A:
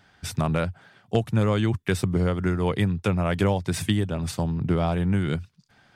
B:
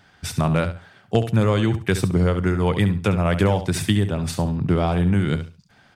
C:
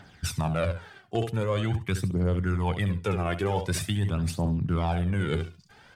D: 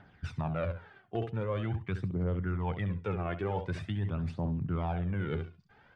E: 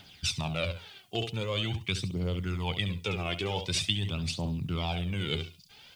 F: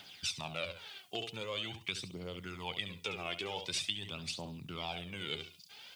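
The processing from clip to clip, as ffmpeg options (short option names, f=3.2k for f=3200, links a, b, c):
-af "aecho=1:1:69|138|207:0.282|0.062|0.0136,volume=3.5dB"
-af "aphaser=in_gain=1:out_gain=1:delay=2.9:decay=0.55:speed=0.45:type=triangular,areverse,acompressor=threshold=-24dB:ratio=6,areverse"
-af "lowpass=2.3k,volume=-6dB"
-af "aexciter=amount=15.4:drive=5:freq=2.6k"
-af "acompressor=threshold=-38dB:ratio=2,highpass=f=460:p=1,volume=1dB"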